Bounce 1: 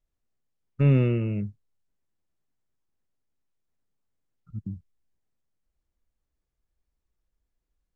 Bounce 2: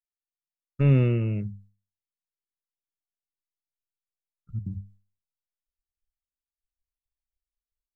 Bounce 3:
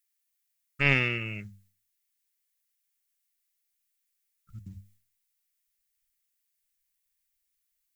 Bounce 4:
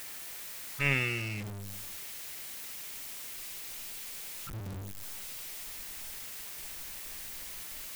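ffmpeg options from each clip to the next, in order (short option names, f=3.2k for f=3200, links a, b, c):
-af "asubboost=boost=3:cutoff=140,agate=range=-33dB:threshold=-50dB:ratio=3:detection=peak,bandreject=f=50:t=h:w=6,bandreject=f=100:t=h:w=6,bandreject=f=150:t=h:w=6,bandreject=f=200:t=h:w=6"
-af "crystalizer=i=9:c=0,aeval=exprs='0.422*(cos(1*acos(clip(val(0)/0.422,-1,1)))-cos(1*PI/2))+0.0668*(cos(3*acos(clip(val(0)/0.422,-1,1)))-cos(3*PI/2))':c=same,equalizer=f=125:t=o:w=1:g=-7,equalizer=f=250:t=o:w=1:g=-4,equalizer=f=500:t=o:w=1:g=-5,equalizer=f=2k:t=o:w=1:g=9"
-af "aeval=exprs='val(0)+0.5*0.0335*sgn(val(0))':c=same,volume=-6dB"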